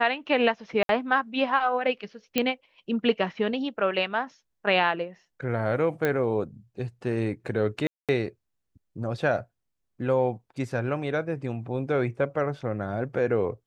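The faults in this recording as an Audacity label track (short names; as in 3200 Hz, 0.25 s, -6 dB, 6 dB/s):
0.830000	0.890000	gap 62 ms
2.380000	2.380000	pop -8 dBFS
6.050000	6.050000	pop -13 dBFS
7.870000	8.090000	gap 0.217 s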